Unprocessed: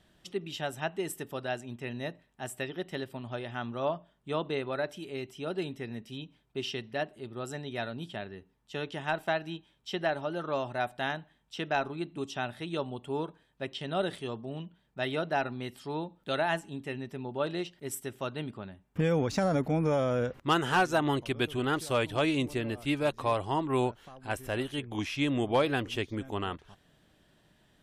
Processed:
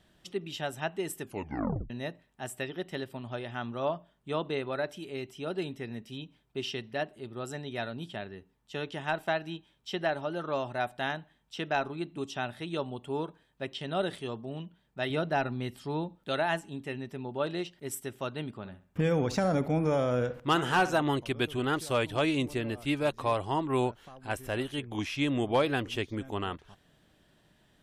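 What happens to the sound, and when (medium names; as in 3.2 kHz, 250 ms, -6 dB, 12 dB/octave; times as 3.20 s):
1.21 s: tape stop 0.69 s
15.10–16.16 s: bass shelf 190 Hz +8 dB
18.57–21.02 s: feedback echo behind a low-pass 64 ms, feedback 34%, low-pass 2.9 kHz, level -13.5 dB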